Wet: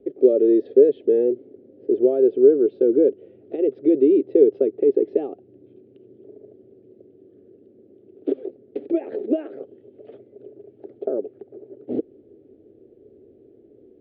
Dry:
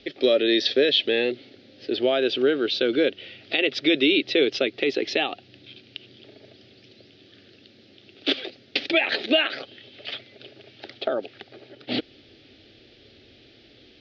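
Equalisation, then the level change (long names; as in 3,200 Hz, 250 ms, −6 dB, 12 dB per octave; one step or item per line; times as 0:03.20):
low-pass with resonance 420 Hz, resonance Q 3.7
low-shelf EQ 70 Hz −9.5 dB
−2.0 dB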